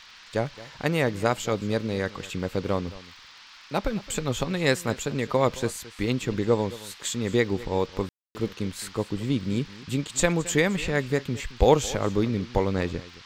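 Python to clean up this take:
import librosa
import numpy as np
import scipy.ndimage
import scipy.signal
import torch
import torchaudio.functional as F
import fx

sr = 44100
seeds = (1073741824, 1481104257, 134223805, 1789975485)

y = fx.fix_declick_ar(x, sr, threshold=6.5)
y = fx.fix_ambience(y, sr, seeds[0], print_start_s=3.21, print_end_s=3.71, start_s=8.09, end_s=8.35)
y = fx.noise_reduce(y, sr, print_start_s=3.21, print_end_s=3.71, reduce_db=24.0)
y = fx.fix_echo_inverse(y, sr, delay_ms=219, level_db=-18.5)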